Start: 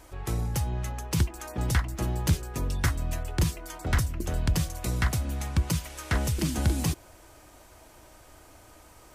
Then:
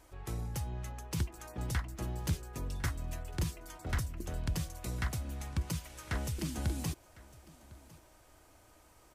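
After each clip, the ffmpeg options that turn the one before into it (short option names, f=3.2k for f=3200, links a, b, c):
-af "aecho=1:1:1054:0.0841,volume=-9dB"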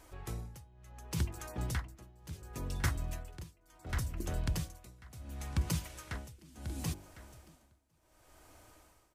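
-af "bandreject=f=48.58:t=h:w=4,bandreject=f=97.16:t=h:w=4,bandreject=f=145.74:t=h:w=4,bandreject=f=194.32:t=h:w=4,bandreject=f=242.9:t=h:w=4,bandreject=f=291.48:t=h:w=4,bandreject=f=340.06:t=h:w=4,bandreject=f=388.64:t=h:w=4,bandreject=f=437.22:t=h:w=4,bandreject=f=485.8:t=h:w=4,bandreject=f=534.38:t=h:w=4,bandreject=f=582.96:t=h:w=4,bandreject=f=631.54:t=h:w=4,bandreject=f=680.12:t=h:w=4,bandreject=f=728.7:t=h:w=4,bandreject=f=777.28:t=h:w=4,bandreject=f=825.86:t=h:w=4,bandreject=f=874.44:t=h:w=4,bandreject=f=923.02:t=h:w=4,tremolo=f=0.7:d=0.94,volume=3dB"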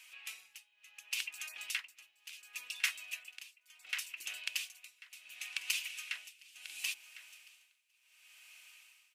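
-af "highpass=f=2.6k:t=q:w=6.1,volume=2dB"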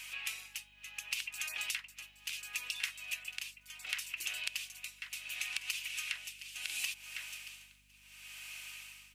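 -af "acompressor=threshold=-45dB:ratio=10,aeval=exprs='val(0)+0.0001*(sin(2*PI*50*n/s)+sin(2*PI*2*50*n/s)/2+sin(2*PI*3*50*n/s)/3+sin(2*PI*4*50*n/s)/4+sin(2*PI*5*50*n/s)/5)':c=same,volume=10.5dB"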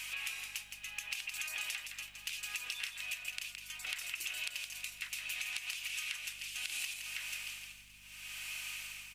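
-filter_complex "[0:a]acompressor=threshold=-41dB:ratio=6,asplit=5[a][b][c][d][e];[b]adelay=166,afreqshift=-34,volume=-6.5dB[f];[c]adelay=332,afreqshift=-68,volume=-16.4dB[g];[d]adelay=498,afreqshift=-102,volume=-26.3dB[h];[e]adelay=664,afreqshift=-136,volume=-36.2dB[i];[a][f][g][h][i]amix=inputs=5:normalize=0,volume=4dB"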